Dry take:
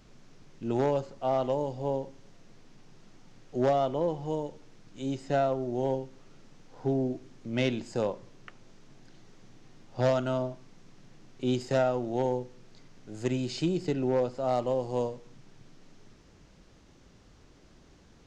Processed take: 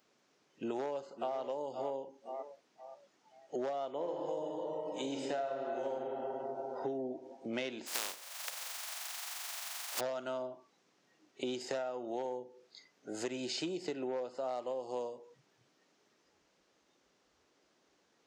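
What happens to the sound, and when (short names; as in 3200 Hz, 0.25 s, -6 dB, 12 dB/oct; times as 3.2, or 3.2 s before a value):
0.65–1.38 echo throw 0.52 s, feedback 35%, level -12.5 dB
3.92–5.92 reverb throw, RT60 2.7 s, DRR -0.5 dB
7.86–9.99 spectral contrast lowered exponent 0.15
whole clip: HPF 390 Hz 12 dB/oct; spectral noise reduction 17 dB; compressor 8:1, threshold -43 dBFS; gain +7.5 dB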